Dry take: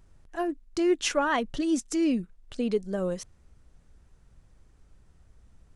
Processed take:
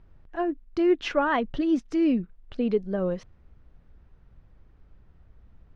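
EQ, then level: distance through air 290 m; +3.0 dB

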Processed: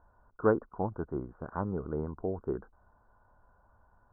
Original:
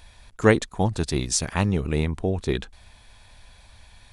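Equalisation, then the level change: rippled Chebyshev low-pass 1.5 kHz, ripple 3 dB; bass shelf 250 Hz -8.5 dB; -4.5 dB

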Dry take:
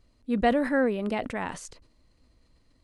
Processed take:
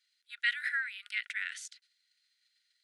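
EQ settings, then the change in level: peaking EQ 3.5 kHz +8 dB 0.48 oct; dynamic bell 2.2 kHz, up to +8 dB, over -45 dBFS, Q 1.9; rippled Chebyshev high-pass 1.4 kHz, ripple 3 dB; -2.0 dB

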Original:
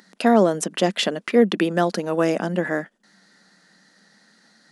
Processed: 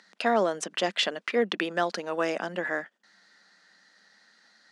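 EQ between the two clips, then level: high-pass 1.1 kHz 6 dB/octave; distance through air 83 m; 0.0 dB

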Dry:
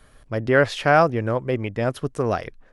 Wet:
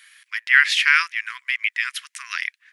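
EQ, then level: brick-wall FIR high-pass 980 Hz; resonant high shelf 1.5 kHz +10.5 dB, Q 3; -2.0 dB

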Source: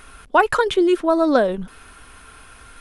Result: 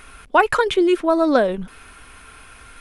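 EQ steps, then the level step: peaking EQ 2.3 kHz +4.5 dB 0.51 oct; 0.0 dB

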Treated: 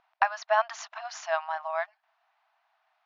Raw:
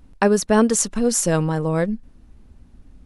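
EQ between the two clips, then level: brick-wall FIR band-pass 630–7200 Hz; distance through air 220 m; treble shelf 5.5 kHz -7 dB; 0.0 dB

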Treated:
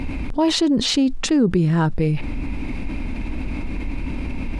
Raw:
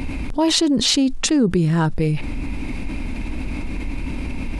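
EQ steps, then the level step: low-pass 3.7 kHz 6 dB/octave; 0.0 dB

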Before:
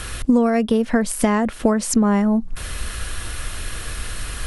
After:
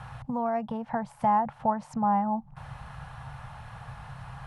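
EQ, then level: two resonant band-passes 340 Hz, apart 2.6 oct; +6.0 dB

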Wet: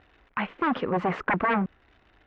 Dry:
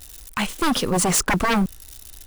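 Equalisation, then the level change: high-pass 270 Hz 6 dB/octave; low-pass 2.2 kHz 24 dB/octave; -2.0 dB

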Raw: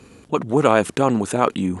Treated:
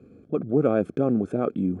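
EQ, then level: boxcar filter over 46 samples; high-pass 150 Hz 6 dB/octave; 0.0 dB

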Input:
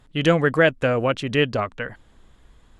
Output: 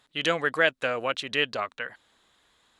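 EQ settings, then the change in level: high-pass 1.1 kHz 6 dB/octave; peaking EQ 3.9 kHz +6.5 dB 0.29 oct; -1.0 dB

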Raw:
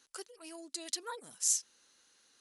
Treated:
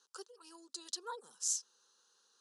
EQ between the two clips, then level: band-pass 340–6600 Hz; static phaser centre 430 Hz, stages 8; 0.0 dB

